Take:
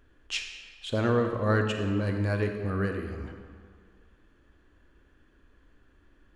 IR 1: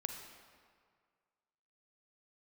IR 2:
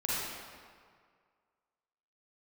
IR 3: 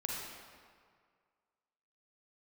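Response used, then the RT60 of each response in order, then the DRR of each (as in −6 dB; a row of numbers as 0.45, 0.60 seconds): 1; 1.9, 1.9, 1.9 seconds; 4.5, −8.0, −3.0 decibels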